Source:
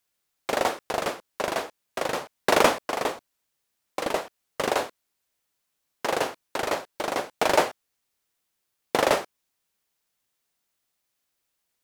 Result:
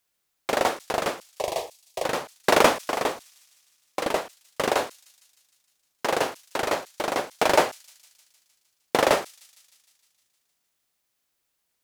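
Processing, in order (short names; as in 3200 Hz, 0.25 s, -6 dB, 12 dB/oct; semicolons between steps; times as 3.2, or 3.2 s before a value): 1.29–2.04 fixed phaser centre 600 Hz, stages 4; on a send: thin delay 0.154 s, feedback 66%, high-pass 5600 Hz, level -15 dB; on the sum: gain +1.5 dB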